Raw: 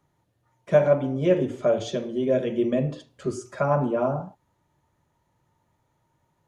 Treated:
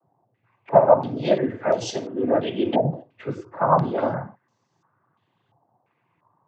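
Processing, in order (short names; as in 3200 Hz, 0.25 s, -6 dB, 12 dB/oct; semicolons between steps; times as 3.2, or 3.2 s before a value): harmoniser +3 st -13 dB; noise vocoder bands 16; stepped low-pass 2.9 Hz 760–5700 Hz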